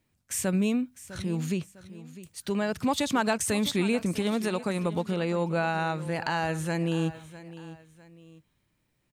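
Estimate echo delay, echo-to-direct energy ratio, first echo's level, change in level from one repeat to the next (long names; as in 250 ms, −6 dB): 653 ms, −15.5 dB, −16.0 dB, −8.5 dB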